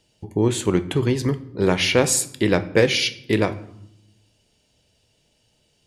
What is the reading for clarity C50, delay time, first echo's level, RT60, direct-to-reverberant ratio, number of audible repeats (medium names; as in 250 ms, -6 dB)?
16.0 dB, no echo, no echo, 0.75 s, 12.0 dB, no echo